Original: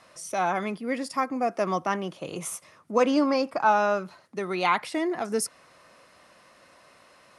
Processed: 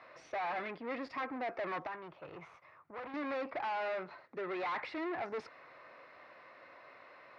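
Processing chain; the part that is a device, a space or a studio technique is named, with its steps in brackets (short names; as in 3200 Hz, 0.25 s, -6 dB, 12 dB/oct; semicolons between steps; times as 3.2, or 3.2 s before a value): guitar amplifier (tube stage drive 36 dB, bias 0.4; tone controls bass -7 dB, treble -8 dB; speaker cabinet 82–4000 Hz, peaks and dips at 200 Hz -9 dB, 2100 Hz +4 dB, 3100 Hz -8 dB); 1.87–3.14 ten-band EQ 250 Hz -9 dB, 500 Hz -7 dB, 2000 Hz -5 dB, 4000 Hz -7 dB, 8000 Hz -12 dB; gain +1.5 dB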